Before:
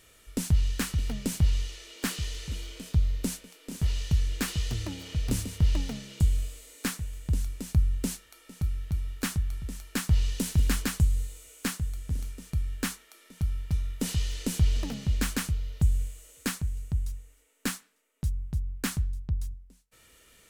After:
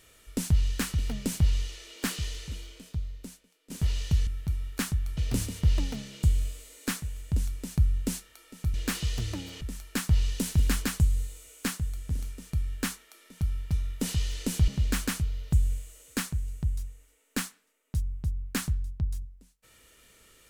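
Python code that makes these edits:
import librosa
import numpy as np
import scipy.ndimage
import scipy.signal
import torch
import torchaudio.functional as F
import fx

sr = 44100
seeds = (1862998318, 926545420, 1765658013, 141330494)

y = fx.edit(x, sr, fx.fade_out_to(start_s=2.27, length_s=1.43, curve='qua', floor_db=-16.5),
    fx.swap(start_s=4.27, length_s=0.87, other_s=8.71, other_length_s=0.9),
    fx.cut(start_s=14.68, length_s=0.29), tone=tone)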